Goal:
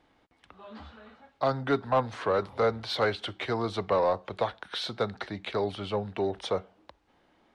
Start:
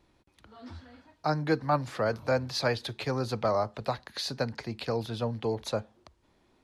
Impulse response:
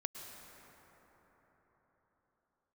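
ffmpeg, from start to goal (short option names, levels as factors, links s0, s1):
-filter_complex "[0:a]asetrate=38808,aresample=44100,asplit=2[s0][s1];[s1]highpass=f=720:p=1,volume=3.98,asoftclip=type=tanh:threshold=0.2[s2];[s0][s2]amix=inputs=2:normalize=0,lowpass=f=1900:p=1,volume=0.501"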